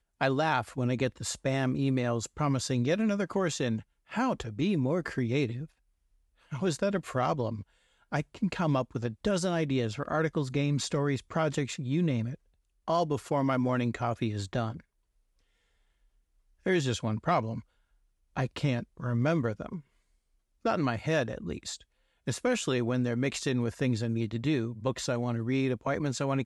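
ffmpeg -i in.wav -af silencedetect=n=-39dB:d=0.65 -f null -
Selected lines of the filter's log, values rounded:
silence_start: 5.65
silence_end: 6.52 | silence_duration: 0.87
silence_start: 14.80
silence_end: 16.66 | silence_duration: 1.86
silence_start: 17.60
silence_end: 18.37 | silence_duration: 0.77
silence_start: 19.79
silence_end: 20.65 | silence_duration: 0.86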